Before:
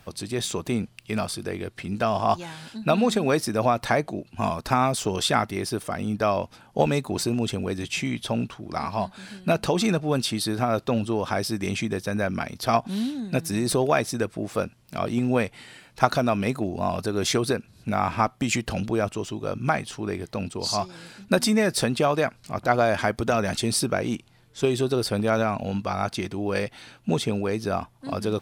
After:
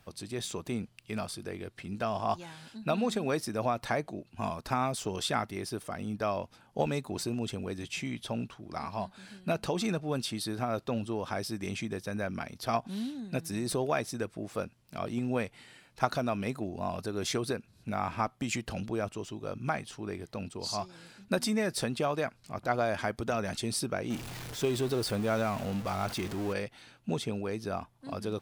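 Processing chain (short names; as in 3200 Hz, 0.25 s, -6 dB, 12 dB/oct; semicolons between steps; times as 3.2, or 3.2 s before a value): 24.1–26.53 zero-crossing step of -27.5 dBFS; gain -8.5 dB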